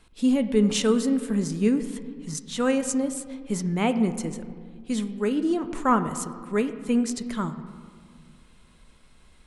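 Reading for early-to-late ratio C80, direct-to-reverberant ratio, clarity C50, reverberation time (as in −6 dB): 12.5 dB, 9.5 dB, 11.5 dB, 1.9 s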